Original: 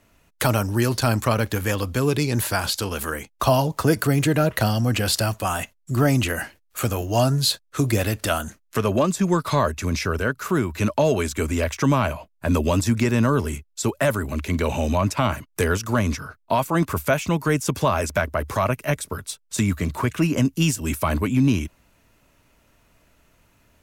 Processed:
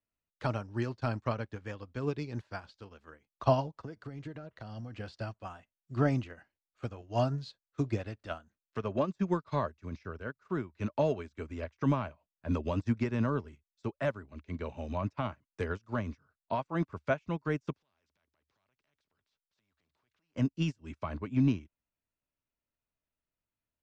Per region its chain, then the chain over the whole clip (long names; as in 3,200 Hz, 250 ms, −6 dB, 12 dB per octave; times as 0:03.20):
0:03.76–0:04.96: notch filter 2,500 Hz, Q 22 + downward compressor 10 to 1, threshold −19 dBFS
0:17.73–0:20.36: downward compressor 4 to 1, threshold −33 dBFS + transient designer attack −6 dB, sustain +2 dB + every bin compressed towards the loudest bin 2 to 1
whole clip: low-pass filter 5,000 Hz 24 dB per octave; dynamic equaliser 3,600 Hz, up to −5 dB, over −40 dBFS, Q 0.83; expander for the loud parts 2.5 to 1, over −34 dBFS; level −5.5 dB